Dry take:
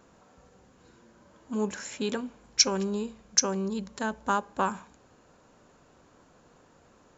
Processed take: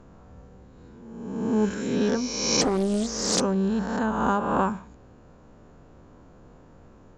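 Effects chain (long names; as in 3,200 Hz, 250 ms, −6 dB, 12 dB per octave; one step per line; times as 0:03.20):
peak hold with a rise ahead of every peak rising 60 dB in 1.32 s
spectral tilt −3 dB per octave
0:02.61–0:03.41: highs frequency-modulated by the lows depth 0.55 ms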